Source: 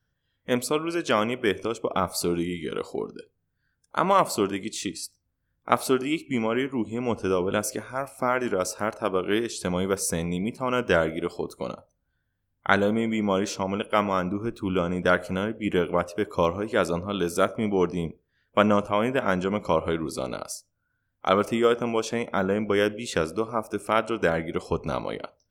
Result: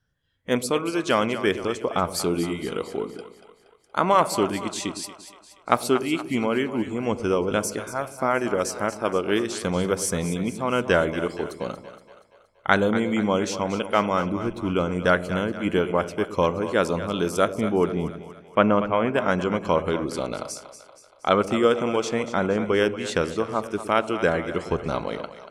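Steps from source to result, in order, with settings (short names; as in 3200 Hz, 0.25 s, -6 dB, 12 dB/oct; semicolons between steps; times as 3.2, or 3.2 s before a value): LPF 12000 Hz 12 dB/oct, from 17.48 s 2800 Hz, from 19.14 s 9600 Hz; split-band echo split 510 Hz, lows 0.111 s, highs 0.236 s, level -12 dB; gain +1.5 dB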